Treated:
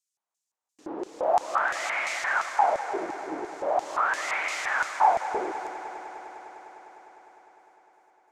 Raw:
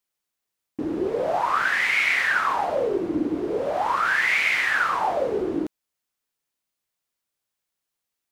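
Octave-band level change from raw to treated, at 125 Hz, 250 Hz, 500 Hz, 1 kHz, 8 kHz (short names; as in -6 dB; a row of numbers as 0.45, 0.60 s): under -15 dB, -12.0 dB, -4.5 dB, 0.0 dB, +1.5 dB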